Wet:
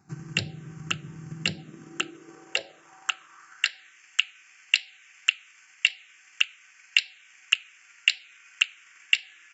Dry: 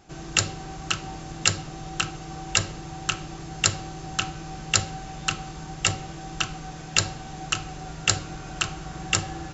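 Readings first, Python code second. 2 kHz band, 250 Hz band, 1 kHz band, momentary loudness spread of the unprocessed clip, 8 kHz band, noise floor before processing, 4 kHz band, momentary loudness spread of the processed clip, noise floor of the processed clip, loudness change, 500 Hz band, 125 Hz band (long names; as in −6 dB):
+2.5 dB, −7.5 dB, −12.5 dB, 13 LU, can't be measured, −39 dBFS, +1.0 dB, 15 LU, −56 dBFS, +0.5 dB, −9.5 dB, −9.5 dB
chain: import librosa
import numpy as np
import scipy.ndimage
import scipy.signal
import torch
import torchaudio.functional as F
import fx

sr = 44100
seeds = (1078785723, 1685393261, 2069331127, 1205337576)

y = fx.env_phaser(x, sr, low_hz=550.0, high_hz=1200.0, full_db=-21.0)
y = fx.transient(y, sr, attack_db=7, sustain_db=-2)
y = fx.filter_sweep_highpass(y, sr, from_hz=140.0, to_hz=2300.0, start_s=1.27, end_s=4.03, q=2.8)
y = F.gain(torch.from_numpy(y), -7.0).numpy()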